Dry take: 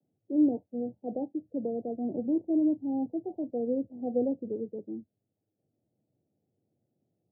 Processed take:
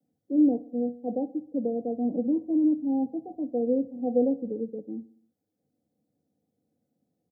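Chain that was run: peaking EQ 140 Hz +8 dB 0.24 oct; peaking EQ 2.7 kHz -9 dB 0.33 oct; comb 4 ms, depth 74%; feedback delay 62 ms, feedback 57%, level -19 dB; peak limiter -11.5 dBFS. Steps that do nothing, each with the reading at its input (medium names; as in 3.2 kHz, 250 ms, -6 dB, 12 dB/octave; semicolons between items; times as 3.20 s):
peaking EQ 2.7 kHz: input has nothing above 810 Hz; peak limiter -11.5 dBFS: peak at its input -13.5 dBFS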